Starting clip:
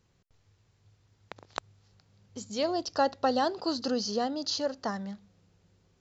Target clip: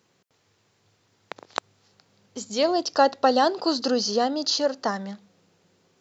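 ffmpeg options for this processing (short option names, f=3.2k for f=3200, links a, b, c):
-af "highpass=230,volume=7.5dB"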